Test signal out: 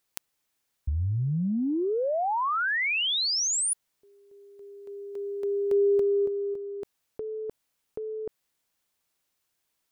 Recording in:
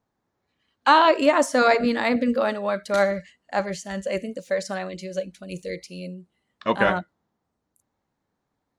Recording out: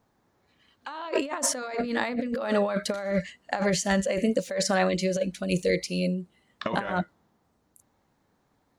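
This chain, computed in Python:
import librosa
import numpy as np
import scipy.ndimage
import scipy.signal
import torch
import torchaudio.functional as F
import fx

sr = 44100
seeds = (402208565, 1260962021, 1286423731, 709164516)

y = fx.over_compress(x, sr, threshold_db=-30.0, ratio=-1.0)
y = y * librosa.db_to_amplitude(2.0)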